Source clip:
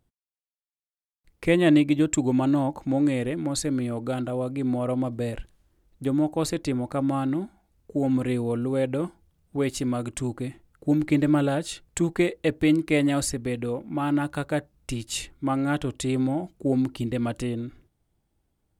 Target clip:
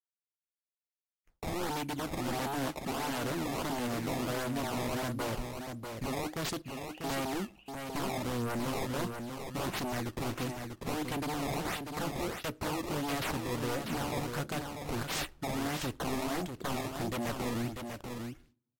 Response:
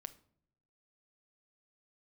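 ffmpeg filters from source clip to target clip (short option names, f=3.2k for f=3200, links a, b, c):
-filter_complex "[0:a]agate=range=-33dB:threshold=-49dB:ratio=3:detection=peak,alimiter=limit=-20dB:level=0:latency=1:release=420,crystalizer=i=2.5:c=0,acrusher=samples=17:mix=1:aa=0.000001:lfo=1:lforange=27.2:lforate=1.5,aeval=exprs='0.0355*(abs(mod(val(0)/0.0355+3,4)-2)-1)':c=same,asettb=1/sr,asplit=3[a][b][c];[a]atrim=end=6.624[d];[b]atrim=start=6.62:end=7.04,asetpts=PTS-STARTPTS,afade=t=in:d=0.004:c=qsin,afade=t=out:st=0.416:d=0.004:c=qsin,asuperpass=centerf=2700:order=4:qfactor=7.3[e];[c]atrim=start=7.036[f];[d][e]acrossfade=d=0.004:c1=hsin:c2=qsin[g];[g][f]acrossfade=d=0.004:c1=qsin:c2=hsin,aecho=1:1:643:0.501,asplit=2[h][i];[1:a]atrim=start_sample=2205,asetrate=48510,aresample=44100[j];[i][j]afir=irnorm=-1:irlink=0,volume=-4.5dB[k];[h][k]amix=inputs=2:normalize=0,volume=-3dB" -ar 44100 -c:a libvorbis -b:a 64k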